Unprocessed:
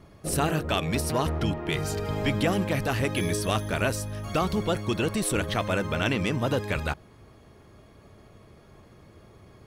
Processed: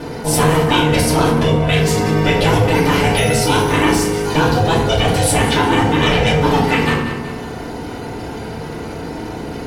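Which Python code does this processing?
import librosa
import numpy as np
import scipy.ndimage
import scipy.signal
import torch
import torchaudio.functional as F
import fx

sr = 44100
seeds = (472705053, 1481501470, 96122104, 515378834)

p1 = fx.peak_eq(x, sr, hz=3400.0, db=3.5, octaves=2.5)
p2 = p1 + fx.echo_feedback(p1, sr, ms=187, feedback_pct=35, wet_db=-17, dry=0)
p3 = p2 * np.sin(2.0 * np.pi * 310.0 * np.arange(len(p2)) / sr)
p4 = fx.rev_fdn(p3, sr, rt60_s=0.6, lf_ratio=1.55, hf_ratio=0.7, size_ms=20.0, drr_db=-7.0)
p5 = fx.env_flatten(p4, sr, amount_pct=50)
y = F.gain(torch.from_numpy(p5), 3.0).numpy()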